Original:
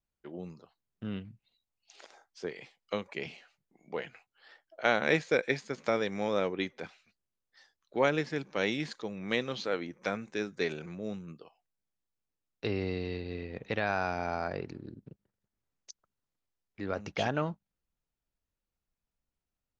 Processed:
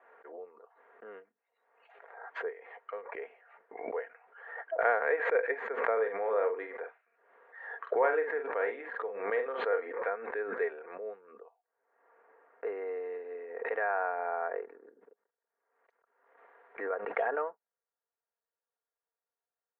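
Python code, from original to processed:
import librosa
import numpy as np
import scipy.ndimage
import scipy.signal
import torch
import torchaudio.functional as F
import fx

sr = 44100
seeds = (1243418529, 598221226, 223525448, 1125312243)

y = fx.tremolo(x, sr, hz=1.2, depth=0.64, at=(2.43, 5.35))
y = fx.doubler(y, sr, ms=45.0, db=-7.0, at=(5.92, 9.92))
y = fx.air_absorb(y, sr, metres=450.0, at=(11.36, 12.67))
y = scipy.signal.sosfilt(scipy.signal.ellip(3, 1.0, 50, [430.0, 1800.0], 'bandpass', fs=sr, output='sos'), y)
y = y + 0.46 * np.pad(y, (int(4.3 * sr / 1000.0), 0))[:len(y)]
y = fx.pre_swell(y, sr, db_per_s=57.0)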